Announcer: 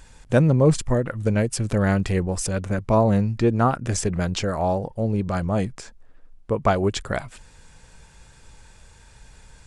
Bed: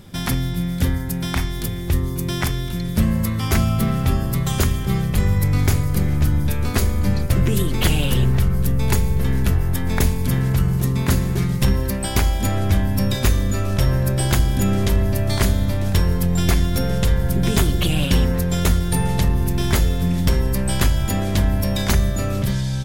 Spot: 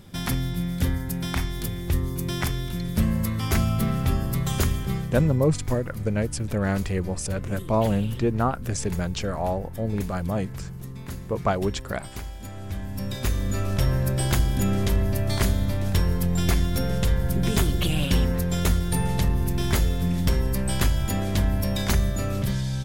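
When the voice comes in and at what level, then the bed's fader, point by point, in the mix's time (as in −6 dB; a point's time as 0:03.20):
4.80 s, −4.0 dB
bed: 0:04.78 −4.5 dB
0:05.58 −17.5 dB
0:12.50 −17.5 dB
0:13.58 −4.5 dB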